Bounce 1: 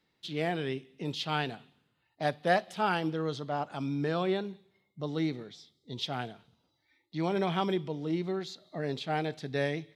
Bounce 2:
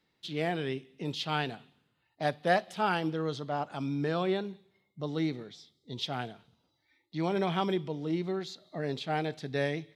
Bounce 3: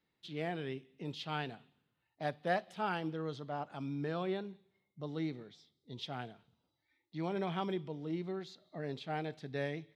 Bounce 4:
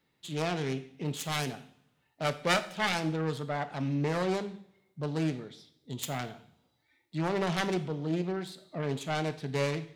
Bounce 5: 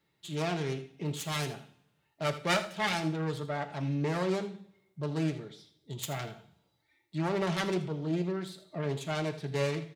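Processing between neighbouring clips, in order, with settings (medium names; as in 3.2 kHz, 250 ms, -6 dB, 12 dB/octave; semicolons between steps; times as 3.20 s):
no audible change
tone controls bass +1 dB, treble -5 dB; trim -7 dB
self-modulated delay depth 0.68 ms; two-slope reverb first 0.53 s, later 1.5 s, from -24 dB, DRR 10 dB; trim +7.5 dB
comb of notches 250 Hz; delay 80 ms -15 dB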